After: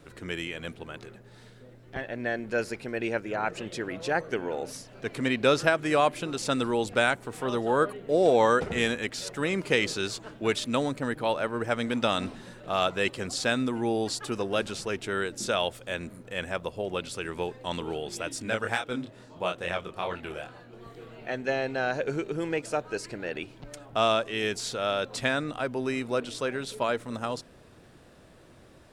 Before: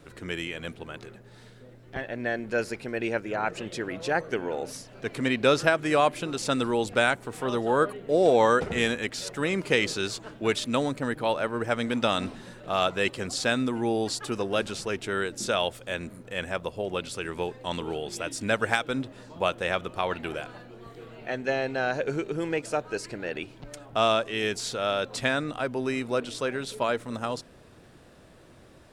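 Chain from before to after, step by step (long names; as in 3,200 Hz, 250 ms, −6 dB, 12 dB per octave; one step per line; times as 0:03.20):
0:18.42–0:20.73: chorus effect 2.3 Hz, depth 6 ms
level −1 dB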